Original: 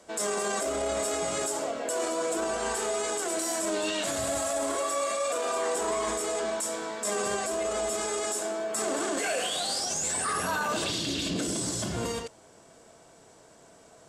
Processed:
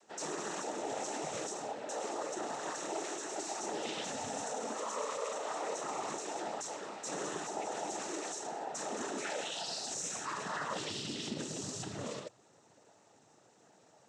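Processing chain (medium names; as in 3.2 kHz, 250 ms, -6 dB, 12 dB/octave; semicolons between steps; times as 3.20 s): noise-vocoded speech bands 12; trim -8.5 dB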